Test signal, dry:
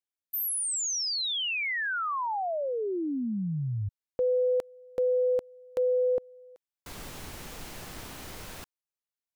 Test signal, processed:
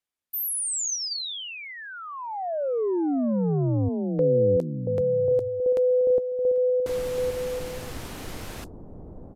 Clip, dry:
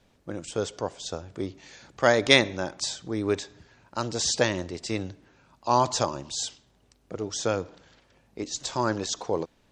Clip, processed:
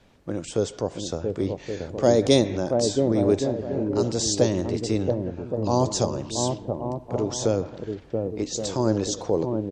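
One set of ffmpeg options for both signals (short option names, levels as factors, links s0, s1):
-filter_complex "[0:a]acrossover=split=660|4200[s0][s1][s2];[s0]aecho=1:1:680|1122|1409|1596|1717:0.631|0.398|0.251|0.158|0.1[s3];[s1]acompressor=threshold=0.00398:ratio=6:attack=4.4:release=48:detection=rms[s4];[s2]flanger=delay=9.6:depth=4.4:regen=-32:speed=1.2:shape=sinusoidal[s5];[s3][s4][s5]amix=inputs=3:normalize=0,aresample=32000,aresample=44100,volume=2"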